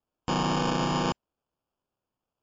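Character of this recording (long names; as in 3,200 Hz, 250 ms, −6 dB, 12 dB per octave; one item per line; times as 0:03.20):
aliases and images of a low sample rate 2,000 Hz, jitter 0%
MP3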